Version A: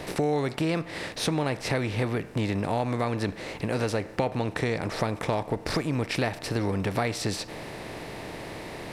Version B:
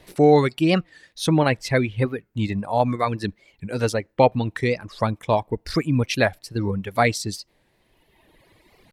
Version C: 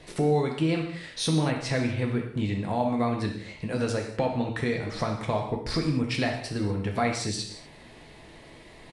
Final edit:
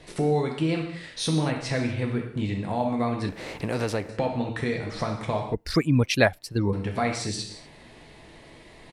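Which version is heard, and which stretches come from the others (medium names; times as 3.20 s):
C
3.29–4.09 s: from A
5.54–6.73 s: from B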